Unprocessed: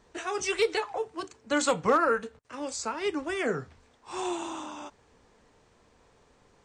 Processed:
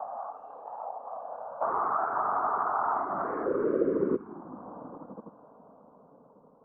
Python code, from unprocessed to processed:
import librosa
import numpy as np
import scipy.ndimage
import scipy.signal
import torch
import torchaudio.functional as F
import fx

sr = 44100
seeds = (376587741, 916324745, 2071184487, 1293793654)

y = fx.spec_swells(x, sr, rise_s=0.99)
y = fx.dynamic_eq(y, sr, hz=710.0, q=1.8, threshold_db=-36.0, ratio=4.0, max_db=-4)
y = fx.echo_swell(y, sr, ms=84, loudest=5, wet_db=-14.0)
y = fx.leveller(y, sr, passes=5, at=(1.62, 4.16))
y = fx.level_steps(y, sr, step_db=20)
y = fx.rev_spring(y, sr, rt60_s=3.9, pass_ms=(52,), chirp_ms=75, drr_db=12.0)
y = fx.filter_sweep_bandpass(y, sr, from_hz=680.0, to_hz=330.0, start_s=2.98, end_s=4.08, q=7.0)
y = fx.whisperise(y, sr, seeds[0])
y = fx.env_phaser(y, sr, low_hz=350.0, high_hz=1500.0, full_db=-19.0)
y = fx.curve_eq(y, sr, hz=(310.0, 550.0, 1200.0, 2300.0, 4600.0), db=(0, 6, 10, -13, -28))
y = fx.band_squash(y, sr, depth_pct=40)
y = F.gain(torch.from_numpy(y), 3.5).numpy()